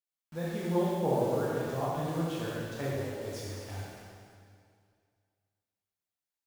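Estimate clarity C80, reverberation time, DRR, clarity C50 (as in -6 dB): -1.0 dB, 2.2 s, -7.5 dB, -3.0 dB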